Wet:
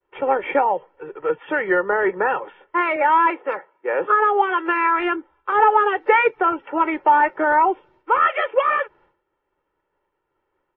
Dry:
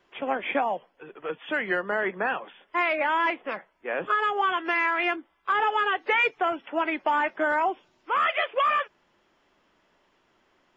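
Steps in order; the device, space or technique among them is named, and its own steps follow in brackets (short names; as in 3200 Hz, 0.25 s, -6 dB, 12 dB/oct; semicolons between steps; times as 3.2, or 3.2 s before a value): hearing-loss simulation (LPF 1600 Hz 12 dB/oct; expander -57 dBFS); 2.96–4.69 HPF 240 Hz 12 dB/oct; comb 2.2 ms, depth 71%; gain +7 dB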